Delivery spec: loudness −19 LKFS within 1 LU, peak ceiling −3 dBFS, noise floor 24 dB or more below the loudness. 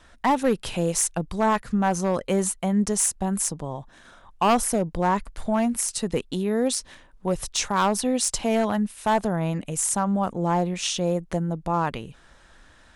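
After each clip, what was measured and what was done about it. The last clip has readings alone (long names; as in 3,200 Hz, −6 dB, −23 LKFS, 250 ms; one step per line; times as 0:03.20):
share of clipped samples 0.9%; peaks flattened at −14.5 dBFS; integrated loudness −24.5 LKFS; sample peak −14.5 dBFS; target loudness −19.0 LKFS
→ clipped peaks rebuilt −14.5 dBFS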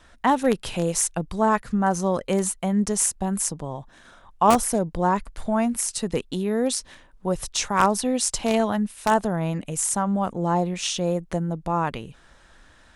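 share of clipped samples 0.0%; integrated loudness −24.0 LKFS; sample peak −5.5 dBFS; target loudness −19.0 LKFS
→ level +5 dB
brickwall limiter −3 dBFS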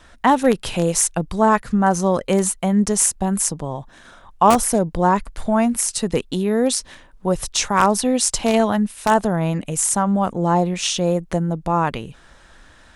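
integrated loudness −19.0 LKFS; sample peak −3.0 dBFS; background noise floor −49 dBFS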